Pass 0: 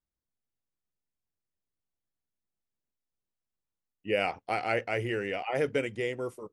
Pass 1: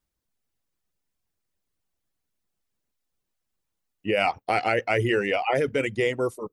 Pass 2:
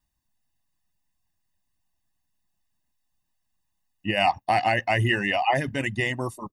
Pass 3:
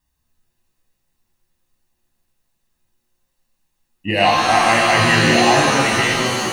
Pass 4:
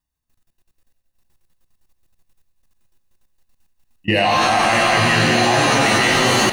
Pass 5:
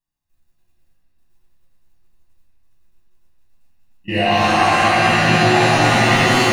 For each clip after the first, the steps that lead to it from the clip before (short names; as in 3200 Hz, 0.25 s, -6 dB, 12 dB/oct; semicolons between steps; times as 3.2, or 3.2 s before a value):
reverb removal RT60 0.54 s; in parallel at +2 dB: negative-ratio compressor -31 dBFS, ratio -0.5; on the sum: gain +1.5 dB
comb 1.1 ms, depth 86%
shimmer reverb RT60 1.7 s, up +7 st, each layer -2 dB, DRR -1 dB; gain +4 dB
level quantiser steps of 22 dB; swelling echo 95 ms, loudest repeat 5, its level -15.5 dB; soft clip -8 dBFS, distortion -30 dB; gain +6.5 dB
reverb RT60 3.0 s, pre-delay 6 ms, DRR -10.5 dB; gain -10 dB